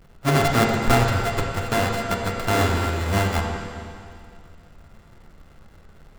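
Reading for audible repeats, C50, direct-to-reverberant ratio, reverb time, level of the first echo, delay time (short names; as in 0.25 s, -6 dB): none, 1.5 dB, 0.0 dB, 2.3 s, none, none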